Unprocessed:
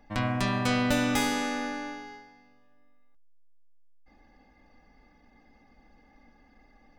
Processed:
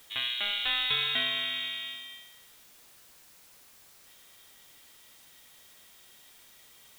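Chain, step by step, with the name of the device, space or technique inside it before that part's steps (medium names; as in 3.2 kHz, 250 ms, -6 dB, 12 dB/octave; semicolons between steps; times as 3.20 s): scrambled radio voice (band-pass 330–3100 Hz; frequency inversion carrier 4 kHz; white noise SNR 20 dB)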